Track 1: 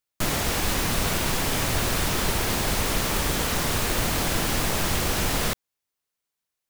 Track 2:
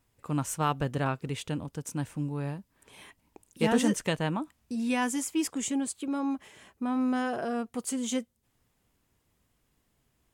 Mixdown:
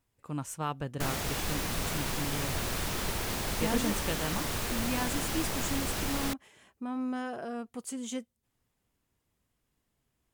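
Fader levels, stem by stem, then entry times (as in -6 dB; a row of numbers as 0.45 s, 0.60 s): -8.5 dB, -6.0 dB; 0.80 s, 0.00 s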